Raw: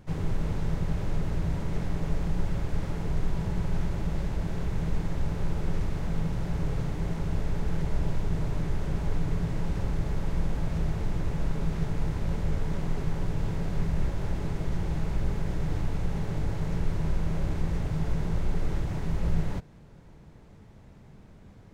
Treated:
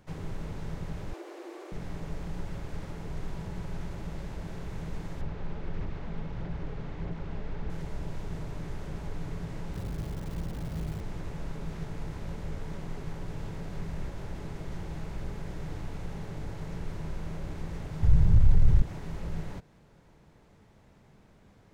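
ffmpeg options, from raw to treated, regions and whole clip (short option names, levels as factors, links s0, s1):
-filter_complex "[0:a]asettb=1/sr,asplit=3[s0][s1][s2];[s0]atrim=end=1.134[s3];[s1]atrim=start=1.13:end=1.72,asetpts=PTS-STARTPTS,afade=t=in:d=0.004:c=qsin,afade=t=out:st=0.586:d=0.004:c=qsin,highpass=f=180:w=0.5412,highpass=f=180:w=1.3066,afreqshift=180[s4];[s2]atrim=start=1.716[s5];[s3][s4]acrossfade=d=0.004:c1=hsin:c2=qsin[s6];[s6][s5]acrossfade=d=0.004:c1=qsin:c2=hsin,asettb=1/sr,asplit=3[s7][s8][s9];[s7]atrim=end=5.214[s10];[s8]atrim=start=5.21:end=7.7,asetpts=PTS-STARTPTS,afade=t=in:d=0.004:c=qsin,afade=t=out:st=2.486:d=0.004:c=qsin,lowpass=3700,aphaser=in_gain=1:out_gain=1:delay=5:decay=0.29:speed=1.6:type=sinusoidal[s11];[s9]atrim=start=7.696[s12];[s10][s11]acrossfade=d=0.004:c1=hsin:c2=qsin[s13];[s13][s12]acrossfade=d=0.004:c1=qsin:c2=hsin,asettb=1/sr,asplit=3[s14][s15][s16];[s14]atrim=end=9.744[s17];[s15]atrim=start=9.74:end=11.01,asetpts=PTS-STARTPTS,afade=t=in:d=0.004:c=qsin,afade=t=out:st=1.266:d=0.004:c=qsin,highpass=f=180:p=1,aemphasis=mode=reproduction:type=bsi,acrusher=bits=8:dc=4:mix=0:aa=0.000001[s18];[s16]atrim=start=11.006[s19];[s17][s18]acrossfade=d=0.004:c1=hsin:c2=qsin[s20];[s20][s19]acrossfade=d=0.004:c1=qsin:c2=hsin,asettb=1/sr,asplit=3[s21][s22][s23];[s21]atrim=end=18.034[s24];[s22]atrim=start=18.03:end=18.82,asetpts=PTS-STARTPTS,afade=t=in:d=0.004:c=qsin,afade=t=out:st=0.786:d=0.004:c=qsin,lowshelf=f=160:t=q:w=1.5:g=14,acontrast=32[s25];[s23]atrim=start=18.816[s26];[s24][s25]acrossfade=d=0.004:c1=hsin:c2=qsin[s27];[s27][s26]acrossfade=d=0.004:c1=qsin:c2=hsin,lowshelf=f=280:g=-7.5,acrossover=split=390[s28][s29];[s29]acompressor=threshold=0.00631:ratio=6[s30];[s28][s30]amix=inputs=2:normalize=0,volume=0.794"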